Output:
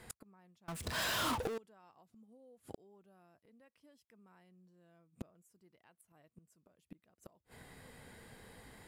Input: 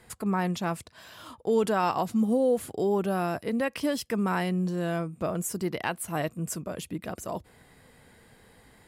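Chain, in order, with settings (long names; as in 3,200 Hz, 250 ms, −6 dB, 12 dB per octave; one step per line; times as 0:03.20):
gate with flip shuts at −28 dBFS, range −37 dB
0:00.68–0:01.58: power curve on the samples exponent 0.35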